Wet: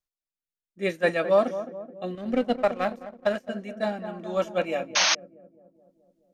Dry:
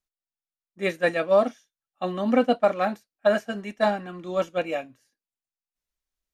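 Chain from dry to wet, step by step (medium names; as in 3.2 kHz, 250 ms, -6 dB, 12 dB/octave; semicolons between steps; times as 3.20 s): filtered feedback delay 213 ms, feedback 64%, low-pass 1.1 kHz, level -10 dB; 2.15–3.49 s: power-law waveshaper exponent 1.4; rotary cabinet horn 0.6 Hz; 4.95–5.15 s: painted sound noise 570–6600 Hz -21 dBFS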